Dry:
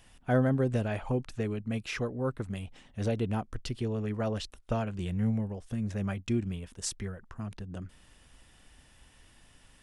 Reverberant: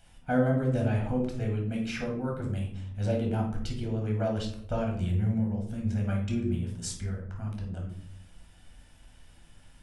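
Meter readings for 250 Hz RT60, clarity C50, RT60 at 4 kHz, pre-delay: 1.2 s, 5.0 dB, 0.40 s, 9 ms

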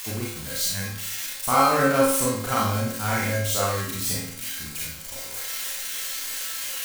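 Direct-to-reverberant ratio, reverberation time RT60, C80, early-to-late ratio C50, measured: −6.5 dB, 0.65 s, 4.0 dB, −0.5 dB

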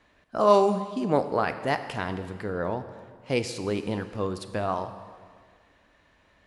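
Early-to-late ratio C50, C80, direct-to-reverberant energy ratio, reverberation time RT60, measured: 11.0 dB, 12.0 dB, 9.0 dB, 1.8 s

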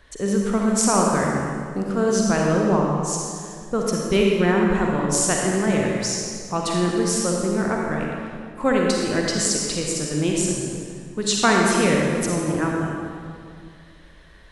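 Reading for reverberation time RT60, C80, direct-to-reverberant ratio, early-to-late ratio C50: 2.2 s, 0.5 dB, −1.5 dB, −1.0 dB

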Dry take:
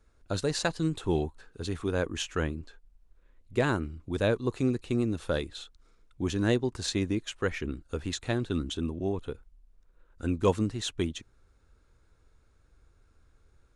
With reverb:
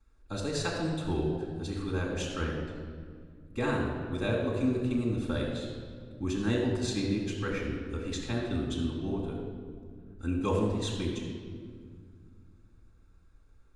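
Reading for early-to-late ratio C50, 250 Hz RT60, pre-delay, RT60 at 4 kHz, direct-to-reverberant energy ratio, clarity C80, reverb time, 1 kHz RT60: 2.0 dB, 3.0 s, 4 ms, 1.3 s, −7.5 dB, 3.5 dB, 2.0 s, 1.8 s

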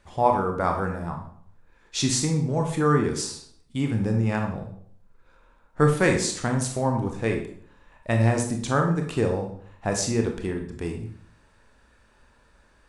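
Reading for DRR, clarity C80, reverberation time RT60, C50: 2.5 dB, 10.0 dB, 0.60 s, 6.5 dB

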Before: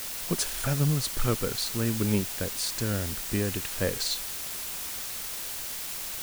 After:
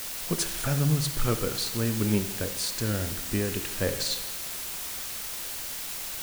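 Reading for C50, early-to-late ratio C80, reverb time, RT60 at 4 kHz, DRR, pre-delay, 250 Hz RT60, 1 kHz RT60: 10.5 dB, 12.5 dB, 1.1 s, 1.1 s, 8.0 dB, 15 ms, 1.1 s, 1.1 s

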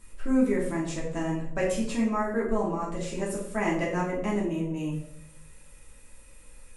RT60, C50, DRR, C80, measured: 0.70 s, 4.5 dB, −5.5 dB, 8.0 dB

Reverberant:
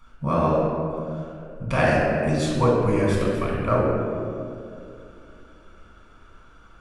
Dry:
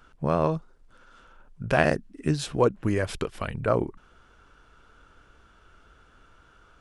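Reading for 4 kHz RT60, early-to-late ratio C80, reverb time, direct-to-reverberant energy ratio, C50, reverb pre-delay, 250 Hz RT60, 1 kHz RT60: 1.2 s, 1.0 dB, 2.5 s, −4.5 dB, −1.0 dB, 3 ms, 3.5 s, 2.1 s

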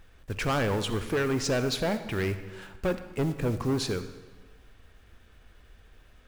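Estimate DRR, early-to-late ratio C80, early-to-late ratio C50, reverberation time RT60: 10.0 dB, 12.0 dB, 11.0 dB, 1.3 s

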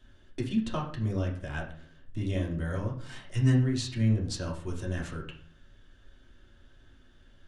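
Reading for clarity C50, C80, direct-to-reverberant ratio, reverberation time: 9.0 dB, 13.0 dB, −2.5 dB, 0.50 s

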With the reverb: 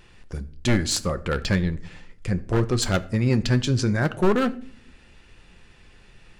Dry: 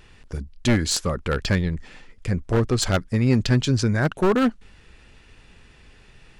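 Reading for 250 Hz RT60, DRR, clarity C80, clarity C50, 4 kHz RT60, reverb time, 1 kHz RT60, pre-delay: 0.90 s, 10.5 dB, 21.5 dB, 18.5 dB, 0.35 s, 0.55 s, 0.45 s, 6 ms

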